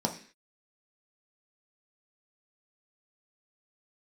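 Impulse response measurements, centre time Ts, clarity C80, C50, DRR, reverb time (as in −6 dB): 14 ms, 15.5 dB, 11.0 dB, 1.5 dB, 0.45 s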